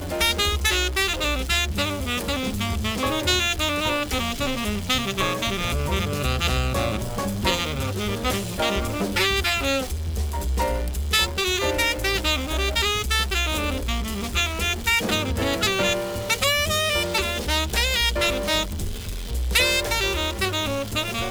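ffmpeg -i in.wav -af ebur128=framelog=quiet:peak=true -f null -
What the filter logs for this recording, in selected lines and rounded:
Integrated loudness:
  I:         -22.8 LUFS
  Threshold: -32.8 LUFS
Loudness range:
  LRA:         2.4 LU
  Threshold: -42.8 LUFS
  LRA low:   -24.0 LUFS
  LRA high:  -21.6 LUFS
True peak:
  Peak:       -6.6 dBFS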